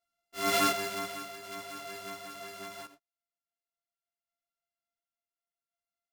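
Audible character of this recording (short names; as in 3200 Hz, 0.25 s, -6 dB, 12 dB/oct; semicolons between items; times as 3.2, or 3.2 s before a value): a buzz of ramps at a fixed pitch in blocks of 64 samples; random-step tremolo 1.4 Hz, depth 80%; a shimmering, thickened sound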